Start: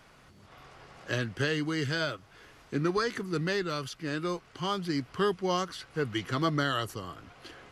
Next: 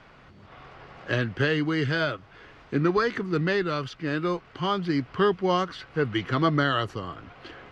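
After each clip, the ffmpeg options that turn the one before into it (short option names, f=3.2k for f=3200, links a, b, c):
-af "lowpass=3.3k,volume=5.5dB"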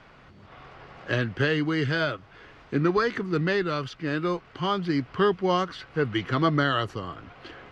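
-af anull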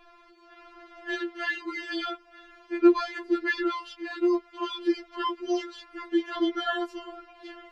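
-af "afftfilt=real='re*4*eq(mod(b,16),0)':imag='im*4*eq(mod(b,16),0)':win_size=2048:overlap=0.75"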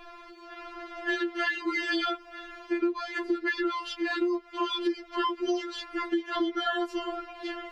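-af "acompressor=threshold=-33dB:ratio=12,volume=8dB"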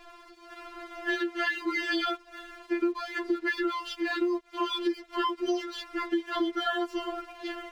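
-af "aeval=exprs='sgn(val(0))*max(abs(val(0))-0.00178,0)':c=same"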